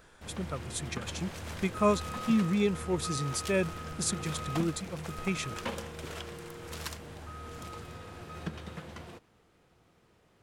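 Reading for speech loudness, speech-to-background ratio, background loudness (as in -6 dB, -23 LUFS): -32.5 LUFS, 8.5 dB, -41.0 LUFS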